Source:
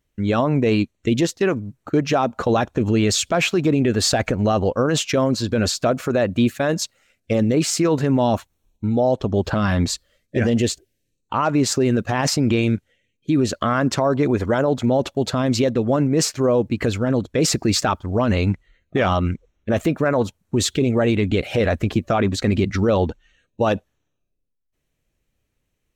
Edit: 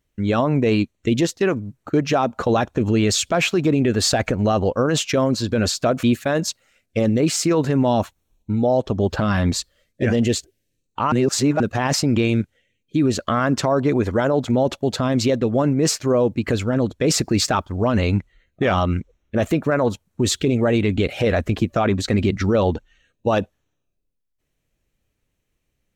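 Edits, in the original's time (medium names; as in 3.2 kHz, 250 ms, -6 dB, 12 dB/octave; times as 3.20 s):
6.03–6.37 s: delete
11.46–11.94 s: reverse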